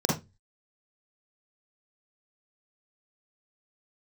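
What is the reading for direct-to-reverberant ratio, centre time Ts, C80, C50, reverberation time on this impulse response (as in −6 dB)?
−3.5 dB, 38 ms, 13.5 dB, 3.5 dB, 0.20 s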